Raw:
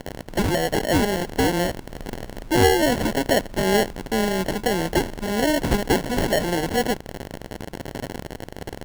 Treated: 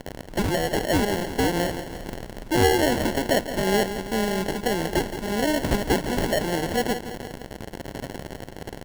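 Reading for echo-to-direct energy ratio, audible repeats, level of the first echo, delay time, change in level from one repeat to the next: -9.5 dB, 3, -11.0 dB, 0.169 s, -4.5 dB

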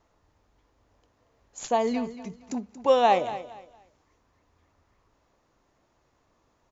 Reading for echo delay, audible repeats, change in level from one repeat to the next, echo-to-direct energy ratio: 0.231 s, 2, -11.5 dB, -13.5 dB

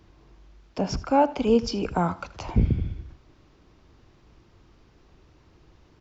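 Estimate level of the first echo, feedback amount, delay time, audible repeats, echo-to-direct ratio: -18.0 dB, 34%, 79 ms, 2, -17.5 dB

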